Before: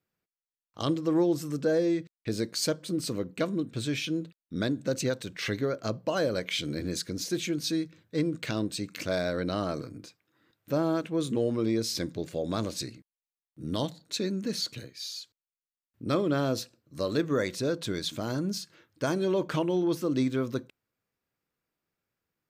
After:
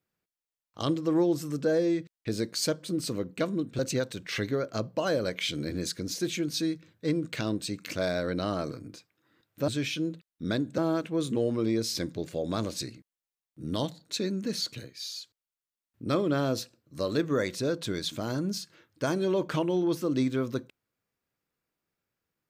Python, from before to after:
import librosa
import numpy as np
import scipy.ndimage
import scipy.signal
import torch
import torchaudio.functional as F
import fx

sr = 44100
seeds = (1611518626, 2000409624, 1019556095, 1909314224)

y = fx.edit(x, sr, fx.move(start_s=3.79, length_s=1.1, to_s=10.78), tone=tone)